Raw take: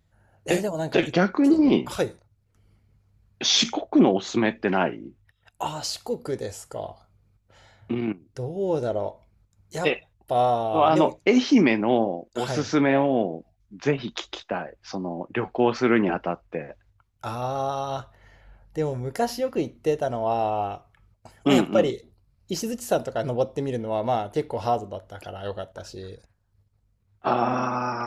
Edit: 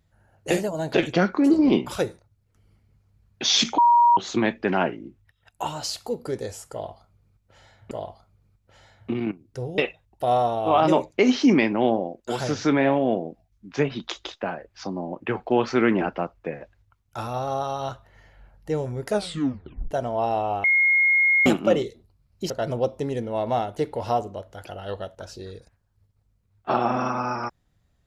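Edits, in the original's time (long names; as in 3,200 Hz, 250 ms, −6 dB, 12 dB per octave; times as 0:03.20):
0:03.78–0:04.17: beep over 951 Hz −12.5 dBFS
0:06.72–0:07.91: repeat, 2 plays
0:08.59–0:09.86: remove
0:19.14: tape stop 0.85 s
0:20.72–0:21.54: beep over 2,150 Hz −15.5 dBFS
0:22.58–0:23.07: remove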